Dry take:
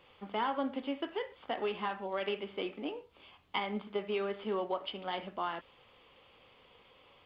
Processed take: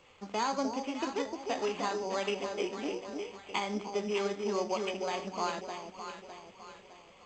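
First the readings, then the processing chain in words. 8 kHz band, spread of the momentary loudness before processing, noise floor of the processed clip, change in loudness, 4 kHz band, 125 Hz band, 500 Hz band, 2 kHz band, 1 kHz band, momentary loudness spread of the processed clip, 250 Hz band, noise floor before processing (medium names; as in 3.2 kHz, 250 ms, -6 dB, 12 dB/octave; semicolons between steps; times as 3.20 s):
no reading, 6 LU, -57 dBFS, +2.0 dB, +2.0 dB, +3.5 dB, +3.0 dB, +2.0 dB, +2.5 dB, 15 LU, +3.0 dB, -63 dBFS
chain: echo whose repeats swap between lows and highs 304 ms, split 830 Hz, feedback 65%, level -4 dB; careless resampling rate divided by 8×, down none, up hold; trim +1.5 dB; G.722 64 kbps 16 kHz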